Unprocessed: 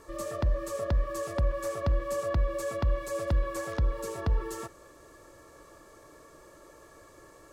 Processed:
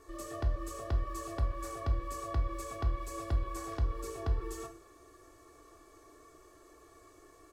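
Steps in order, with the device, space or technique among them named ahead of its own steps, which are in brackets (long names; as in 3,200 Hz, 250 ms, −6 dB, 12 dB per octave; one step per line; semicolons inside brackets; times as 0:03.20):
microphone above a desk (comb filter 2.7 ms, depth 69%; convolution reverb RT60 0.40 s, pre-delay 11 ms, DRR 6 dB)
level −7.5 dB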